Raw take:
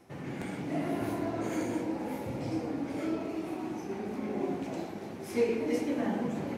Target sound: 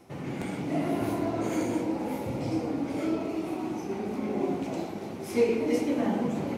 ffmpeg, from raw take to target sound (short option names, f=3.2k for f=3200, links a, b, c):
-af "equalizer=f=1.7k:w=4.5:g=-5.5,volume=4dB"